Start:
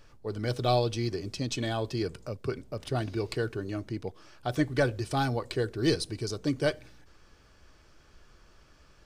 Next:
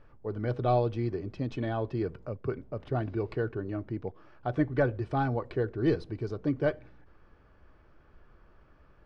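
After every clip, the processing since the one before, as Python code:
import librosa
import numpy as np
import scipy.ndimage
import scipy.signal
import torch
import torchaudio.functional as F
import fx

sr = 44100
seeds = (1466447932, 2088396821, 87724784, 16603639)

y = scipy.signal.sosfilt(scipy.signal.butter(2, 1600.0, 'lowpass', fs=sr, output='sos'), x)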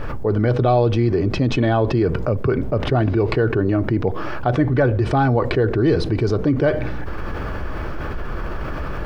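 y = fx.env_flatten(x, sr, amount_pct=70)
y = F.gain(torch.from_numpy(y), 7.5).numpy()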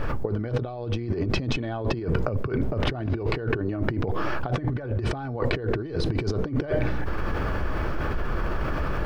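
y = fx.over_compress(x, sr, threshold_db=-21.0, ratio=-0.5)
y = F.gain(torch.from_numpy(y), -3.5).numpy()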